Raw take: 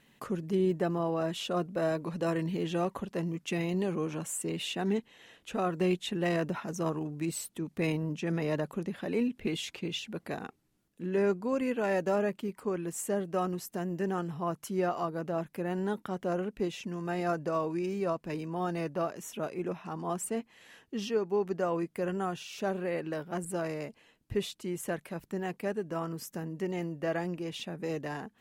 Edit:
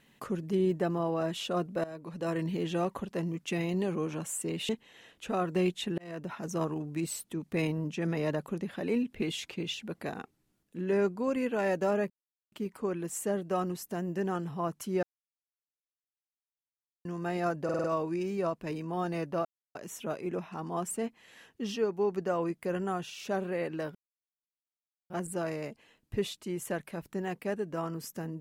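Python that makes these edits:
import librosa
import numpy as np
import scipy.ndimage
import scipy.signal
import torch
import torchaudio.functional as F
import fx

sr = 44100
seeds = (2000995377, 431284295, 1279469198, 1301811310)

y = fx.edit(x, sr, fx.fade_in_from(start_s=1.84, length_s=0.6, floor_db=-17.5),
    fx.cut(start_s=4.69, length_s=0.25),
    fx.fade_in_span(start_s=6.23, length_s=0.5),
    fx.insert_silence(at_s=12.35, length_s=0.42),
    fx.silence(start_s=14.86, length_s=2.02),
    fx.stutter(start_s=17.47, slice_s=0.05, count=5),
    fx.insert_silence(at_s=19.08, length_s=0.3),
    fx.insert_silence(at_s=23.28, length_s=1.15), tone=tone)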